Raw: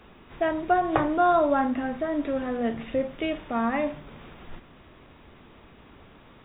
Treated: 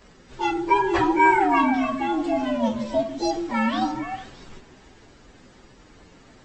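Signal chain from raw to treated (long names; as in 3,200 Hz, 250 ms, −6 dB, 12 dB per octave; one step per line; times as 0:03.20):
partials spread apart or drawn together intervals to 128%
echo through a band-pass that steps 152 ms, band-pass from 320 Hz, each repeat 1.4 octaves, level −3 dB
level +4.5 dB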